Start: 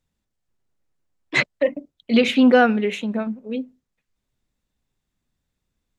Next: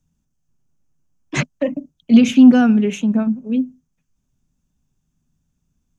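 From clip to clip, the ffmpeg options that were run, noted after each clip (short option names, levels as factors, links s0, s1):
-filter_complex "[0:a]equalizer=f=160:t=o:w=0.33:g=9,equalizer=f=250:t=o:w=0.33:g=6,equalizer=f=500:t=o:w=0.33:g=-5,equalizer=f=2000:t=o:w=0.33:g=-9,equalizer=f=4000:t=o:w=0.33:g=-9,equalizer=f=6300:t=o:w=0.33:g=10,acrossover=split=210|3000[s0][s1][s2];[s0]acontrast=81[s3];[s1]alimiter=limit=0.266:level=0:latency=1:release=245[s4];[s3][s4][s2]amix=inputs=3:normalize=0,volume=1.12"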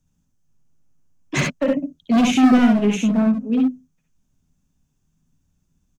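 -af "asoftclip=type=hard:threshold=0.211,aecho=1:1:58|69:0.531|0.631"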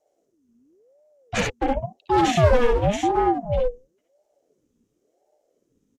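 -af "aresample=32000,aresample=44100,aeval=exprs='val(0)*sin(2*PI*420*n/s+420*0.45/0.94*sin(2*PI*0.94*n/s))':c=same"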